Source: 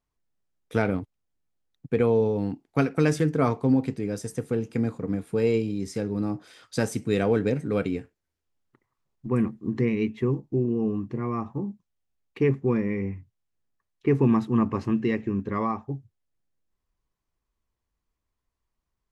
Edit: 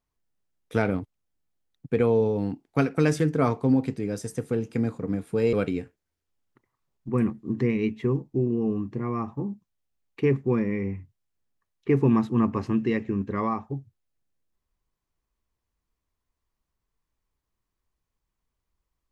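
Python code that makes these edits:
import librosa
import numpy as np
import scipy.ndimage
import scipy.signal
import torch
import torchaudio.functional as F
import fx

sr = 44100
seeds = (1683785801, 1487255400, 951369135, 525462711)

y = fx.edit(x, sr, fx.cut(start_s=5.53, length_s=2.18), tone=tone)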